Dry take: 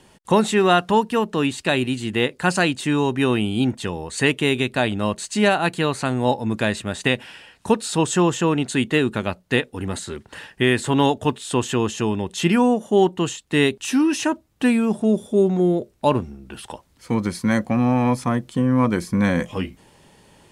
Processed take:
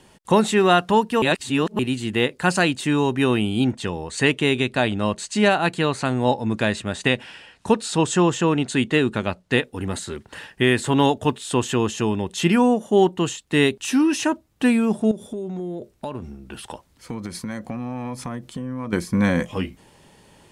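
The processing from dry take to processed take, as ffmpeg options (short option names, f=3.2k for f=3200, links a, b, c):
-filter_complex "[0:a]asettb=1/sr,asplit=3[a][b][c];[a]atrim=end=3.644[d];[b]atrim=start=3.64:end=9.56,asetpts=PTS-STARTPTS,afade=t=in:d=0.004:c=qsin,afade=t=out:st=5.916:d=0.004:c=qsin,lowpass=9.2k[e];[c]atrim=start=9.556[f];[d][e]acrossfade=d=0.004:c1=hsin:c2=qsin[g];[g][f]acrossfade=d=0.004:c1=qsin:c2=hsin,asettb=1/sr,asplit=3[h][i][j];[h]atrim=end=15.114[k];[i]atrim=start=15.11:end=18.93,asetpts=PTS-STARTPTS,afade=t=in:d=0.004:c=qsin,afade=t=out:st=3.816:d=0.004:c=qsin,acompressor=threshold=-26dB:ratio=10:attack=3.2:release=140:knee=1:detection=peak[l];[j]atrim=start=18.926[m];[k][l]acrossfade=d=0.004:c1=hsin:c2=qsin[n];[n][m]acrossfade=d=0.004:c1=qsin:c2=hsin,asplit=3[o][p][q];[o]atrim=end=1.222[r];[p]atrim=start=1.218:end=1.792,asetpts=PTS-STARTPTS,areverse[s];[q]atrim=start=1.788[t];[r][s]acrossfade=d=0.004:c1=hsin:c2=hsin[u];[u][t]acrossfade=d=0.004:c1=hsin:c2=hsin"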